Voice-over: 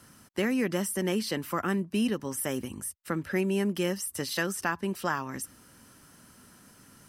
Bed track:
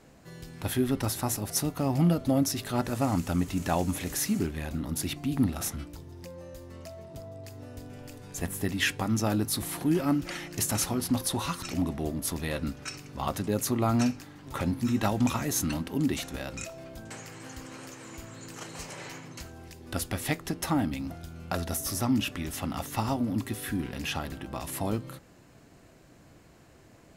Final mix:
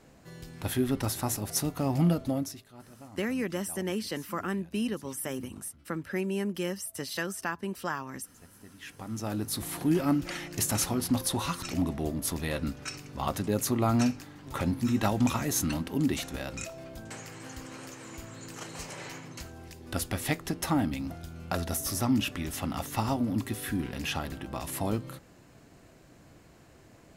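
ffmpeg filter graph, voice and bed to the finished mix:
ffmpeg -i stem1.wav -i stem2.wav -filter_complex "[0:a]adelay=2800,volume=-3.5dB[link_01];[1:a]volume=21dB,afade=type=out:start_time=2.11:duration=0.54:silence=0.0891251,afade=type=in:start_time=8.81:duration=1.09:silence=0.0794328[link_02];[link_01][link_02]amix=inputs=2:normalize=0" out.wav

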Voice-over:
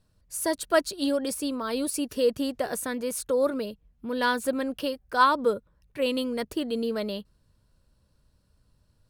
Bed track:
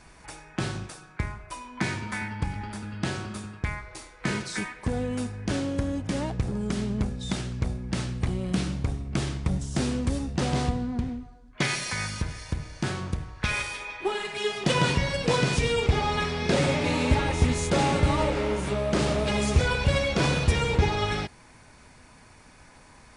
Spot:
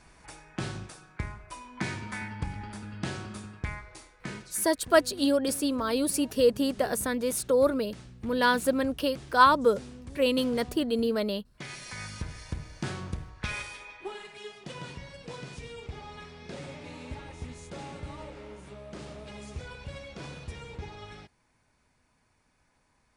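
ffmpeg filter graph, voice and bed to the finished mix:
ffmpeg -i stem1.wav -i stem2.wav -filter_complex "[0:a]adelay=4200,volume=1.5dB[link_01];[1:a]volume=8dB,afade=type=out:start_time=3.78:duration=0.81:silence=0.223872,afade=type=in:start_time=11.57:duration=0.83:silence=0.237137,afade=type=out:start_time=13.16:duration=1.49:silence=0.223872[link_02];[link_01][link_02]amix=inputs=2:normalize=0" out.wav

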